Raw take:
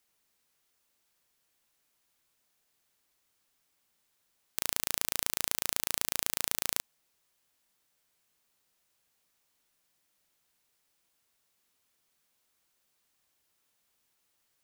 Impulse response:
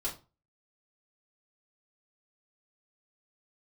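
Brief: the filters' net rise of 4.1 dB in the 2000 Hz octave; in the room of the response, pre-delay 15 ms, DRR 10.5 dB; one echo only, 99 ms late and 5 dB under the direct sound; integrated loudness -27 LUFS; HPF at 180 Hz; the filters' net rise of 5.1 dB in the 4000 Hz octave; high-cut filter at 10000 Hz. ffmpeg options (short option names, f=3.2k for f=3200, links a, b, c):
-filter_complex "[0:a]highpass=180,lowpass=10k,equalizer=f=2k:t=o:g=3.5,equalizer=f=4k:t=o:g=5.5,aecho=1:1:99:0.562,asplit=2[a][b];[1:a]atrim=start_sample=2205,adelay=15[c];[b][c]afir=irnorm=-1:irlink=0,volume=-13dB[d];[a][d]amix=inputs=2:normalize=0,volume=3.5dB"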